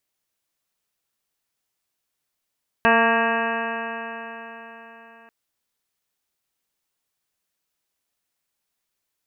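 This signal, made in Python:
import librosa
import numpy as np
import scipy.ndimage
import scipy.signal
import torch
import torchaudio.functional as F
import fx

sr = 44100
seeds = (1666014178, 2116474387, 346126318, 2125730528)

y = fx.additive_stiff(sr, length_s=2.44, hz=227.0, level_db=-22.5, upper_db=(0.0, 3, 2.0, 0.5, -8.0, 4.0, -2, -15.5, -11.5, -2, -12.0), decay_s=4.2, stiffness=0.00078)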